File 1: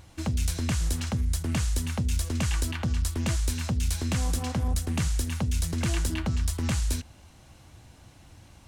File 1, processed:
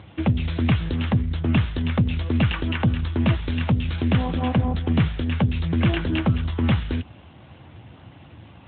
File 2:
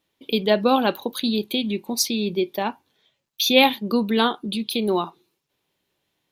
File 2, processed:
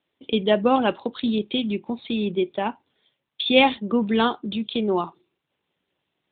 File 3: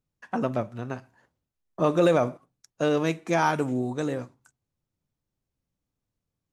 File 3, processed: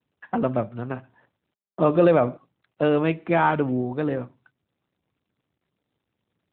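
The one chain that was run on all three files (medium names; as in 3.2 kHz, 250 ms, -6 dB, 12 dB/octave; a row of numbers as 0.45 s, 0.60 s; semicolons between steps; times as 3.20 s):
AMR-NB 12.2 kbps 8 kHz; normalise loudness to -23 LUFS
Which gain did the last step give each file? +10.0 dB, 0.0 dB, +3.5 dB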